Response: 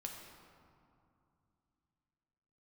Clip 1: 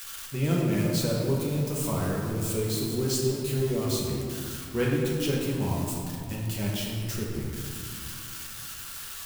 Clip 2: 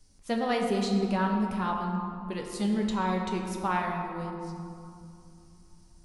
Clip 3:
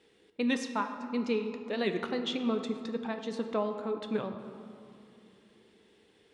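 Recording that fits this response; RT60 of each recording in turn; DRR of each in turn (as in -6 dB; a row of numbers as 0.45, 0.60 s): 2; 2.5, 2.6, 2.7 s; -4.5, 0.5, 6.0 dB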